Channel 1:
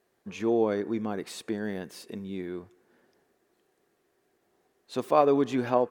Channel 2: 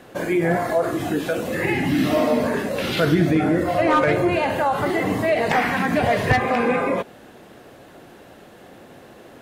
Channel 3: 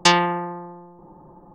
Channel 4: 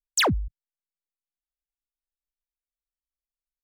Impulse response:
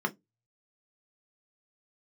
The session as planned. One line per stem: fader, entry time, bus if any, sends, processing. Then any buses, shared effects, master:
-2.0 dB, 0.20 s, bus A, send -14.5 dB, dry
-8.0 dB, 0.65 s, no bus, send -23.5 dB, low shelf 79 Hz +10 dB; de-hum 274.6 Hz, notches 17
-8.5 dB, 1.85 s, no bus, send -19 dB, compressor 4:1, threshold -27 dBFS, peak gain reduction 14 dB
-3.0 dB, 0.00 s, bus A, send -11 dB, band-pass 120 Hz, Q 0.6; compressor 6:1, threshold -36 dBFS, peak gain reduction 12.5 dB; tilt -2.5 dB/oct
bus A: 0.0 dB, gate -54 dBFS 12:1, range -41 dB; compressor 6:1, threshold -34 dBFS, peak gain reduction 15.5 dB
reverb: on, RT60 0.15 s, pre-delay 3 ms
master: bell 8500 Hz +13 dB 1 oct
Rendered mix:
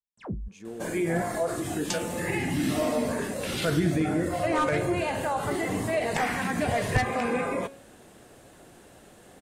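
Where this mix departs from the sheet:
stem 1 -2.0 dB -> -13.0 dB; stem 2: send off

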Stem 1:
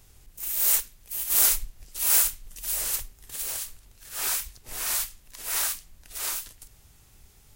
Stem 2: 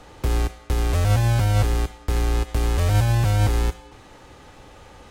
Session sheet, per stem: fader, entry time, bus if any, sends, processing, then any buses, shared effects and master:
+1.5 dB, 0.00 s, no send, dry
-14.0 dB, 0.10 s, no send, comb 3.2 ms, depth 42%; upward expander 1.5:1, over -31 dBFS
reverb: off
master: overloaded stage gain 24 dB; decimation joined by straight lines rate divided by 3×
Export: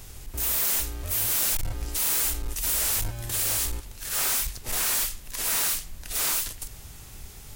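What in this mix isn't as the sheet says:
stem 1 +1.5 dB -> +12.0 dB; master: missing decimation joined by straight lines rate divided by 3×

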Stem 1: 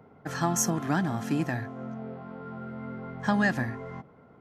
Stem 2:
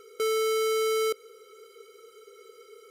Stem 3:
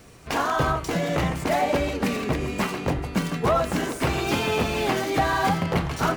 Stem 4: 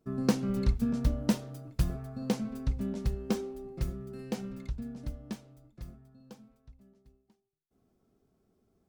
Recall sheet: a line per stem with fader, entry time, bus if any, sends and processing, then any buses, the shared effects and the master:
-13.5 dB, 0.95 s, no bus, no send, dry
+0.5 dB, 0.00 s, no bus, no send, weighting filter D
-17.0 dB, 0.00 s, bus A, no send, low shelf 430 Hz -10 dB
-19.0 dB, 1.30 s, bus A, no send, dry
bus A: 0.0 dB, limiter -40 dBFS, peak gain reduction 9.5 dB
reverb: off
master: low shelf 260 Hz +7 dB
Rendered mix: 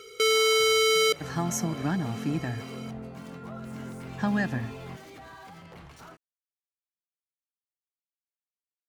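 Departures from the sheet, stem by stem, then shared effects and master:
stem 1 -13.5 dB -> -5.0 dB; stem 4: muted

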